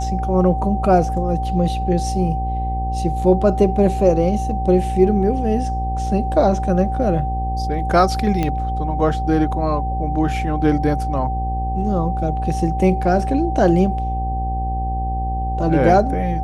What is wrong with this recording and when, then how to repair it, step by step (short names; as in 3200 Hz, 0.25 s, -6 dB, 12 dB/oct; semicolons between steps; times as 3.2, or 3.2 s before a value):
buzz 60 Hz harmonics 16 -23 dBFS
tone 770 Hz -24 dBFS
8.43 pop -9 dBFS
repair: de-click; notch 770 Hz, Q 30; de-hum 60 Hz, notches 16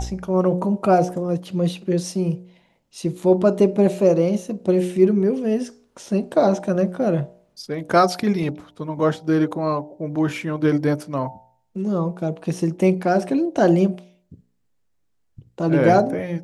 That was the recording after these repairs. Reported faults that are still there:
none